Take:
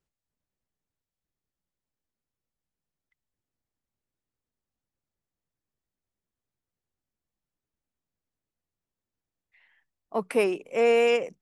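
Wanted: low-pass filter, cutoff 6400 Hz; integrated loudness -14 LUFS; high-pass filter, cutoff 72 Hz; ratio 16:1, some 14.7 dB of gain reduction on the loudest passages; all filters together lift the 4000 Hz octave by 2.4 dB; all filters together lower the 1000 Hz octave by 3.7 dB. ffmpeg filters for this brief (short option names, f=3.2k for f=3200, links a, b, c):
-af "highpass=72,lowpass=6.4k,equalizer=f=1k:t=o:g=-6.5,equalizer=f=4k:t=o:g=5.5,acompressor=threshold=-33dB:ratio=16,volume=24dB"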